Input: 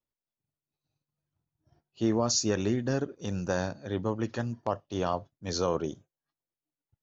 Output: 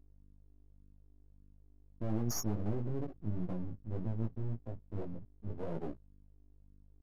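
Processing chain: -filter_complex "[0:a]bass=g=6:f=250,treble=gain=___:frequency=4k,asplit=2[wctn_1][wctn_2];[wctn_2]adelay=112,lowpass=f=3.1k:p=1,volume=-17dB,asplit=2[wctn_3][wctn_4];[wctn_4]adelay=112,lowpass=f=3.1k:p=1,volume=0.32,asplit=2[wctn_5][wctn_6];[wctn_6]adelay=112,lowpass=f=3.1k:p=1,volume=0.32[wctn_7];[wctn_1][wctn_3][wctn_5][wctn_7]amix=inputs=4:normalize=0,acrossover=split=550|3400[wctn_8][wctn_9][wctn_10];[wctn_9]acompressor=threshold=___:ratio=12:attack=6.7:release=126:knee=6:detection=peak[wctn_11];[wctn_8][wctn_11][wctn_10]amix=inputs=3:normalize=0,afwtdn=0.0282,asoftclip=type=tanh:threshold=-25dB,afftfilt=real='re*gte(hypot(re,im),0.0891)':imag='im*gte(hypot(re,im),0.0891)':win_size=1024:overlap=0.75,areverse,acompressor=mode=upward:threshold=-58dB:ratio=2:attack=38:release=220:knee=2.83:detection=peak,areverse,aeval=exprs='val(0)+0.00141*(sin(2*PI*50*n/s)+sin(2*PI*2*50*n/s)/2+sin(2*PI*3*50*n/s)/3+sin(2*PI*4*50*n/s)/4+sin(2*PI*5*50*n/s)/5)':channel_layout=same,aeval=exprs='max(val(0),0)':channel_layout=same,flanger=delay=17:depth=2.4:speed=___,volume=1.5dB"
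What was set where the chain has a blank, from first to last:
7, -45dB, 1.7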